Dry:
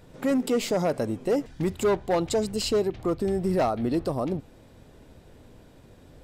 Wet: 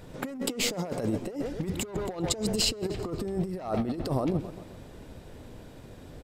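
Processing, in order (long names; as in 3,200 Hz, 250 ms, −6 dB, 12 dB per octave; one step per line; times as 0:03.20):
on a send: repeating echo 130 ms, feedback 54%, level −17.5 dB
on the sum: compressor whose output falls as the input rises −29 dBFS, ratio −0.5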